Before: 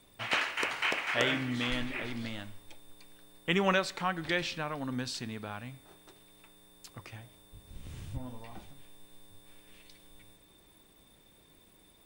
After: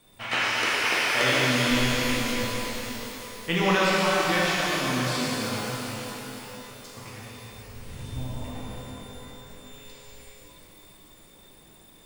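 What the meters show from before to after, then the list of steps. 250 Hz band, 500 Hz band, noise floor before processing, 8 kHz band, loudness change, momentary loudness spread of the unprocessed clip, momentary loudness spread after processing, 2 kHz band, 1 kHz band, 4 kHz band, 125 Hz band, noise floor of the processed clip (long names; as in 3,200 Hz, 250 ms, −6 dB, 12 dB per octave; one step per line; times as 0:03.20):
+8.0 dB, +8.5 dB, −62 dBFS, +14.0 dB, +7.5 dB, 20 LU, 20 LU, +8.0 dB, +8.5 dB, +9.5 dB, +9.0 dB, −53 dBFS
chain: reverb with rising layers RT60 3.8 s, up +12 semitones, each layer −8 dB, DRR −7 dB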